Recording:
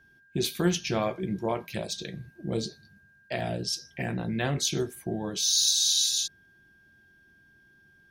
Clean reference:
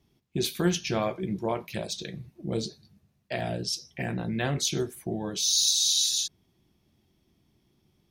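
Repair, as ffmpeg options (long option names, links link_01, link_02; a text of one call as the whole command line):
ffmpeg -i in.wav -af "bandreject=frequency=1600:width=30" out.wav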